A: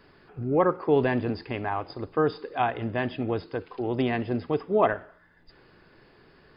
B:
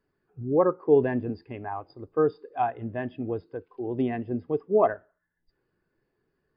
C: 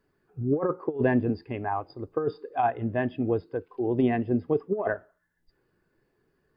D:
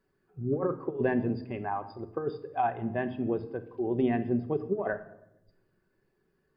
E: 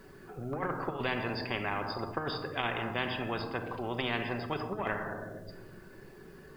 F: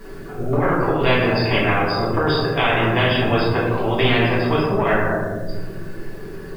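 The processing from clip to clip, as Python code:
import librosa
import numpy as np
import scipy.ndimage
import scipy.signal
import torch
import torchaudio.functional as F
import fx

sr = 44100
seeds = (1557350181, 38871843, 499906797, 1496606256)

y1 = fx.spectral_expand(x, sr, expansion=1.5)
y2 = fx.over_compress(y1, sr, threshold_db=-24.0, ratio=-0.5)
y2 = y2 * librosa.db_to_amplitude(2.0)
y3 = fx.room_shoebox(y2, sr, seeds[0], volume_m3=3300.0, walls='furnished', distance_m=1.1)
y3 = y3 * librosa.db_to_amplitude(-4.0)
y4 = fx.spectral_comp(y3, sr, ratio=4.0)
y5 = fx.room_shoebox(y4, sr, seeds[1], volume_m3=94.0, walls='mixed', distance_m=1.7)
y5 = y5 * librosa.db_to_amplitude(8.0)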